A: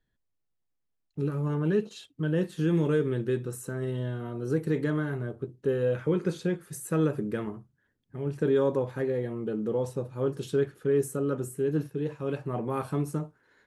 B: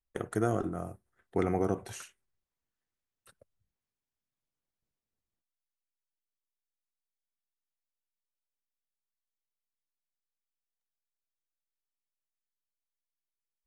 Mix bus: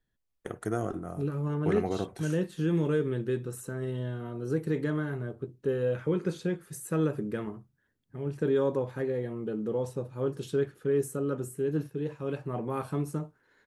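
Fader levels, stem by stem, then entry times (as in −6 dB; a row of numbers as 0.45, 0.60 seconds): −2.0, −2.0 decibels; 0.00, 0.30 seconds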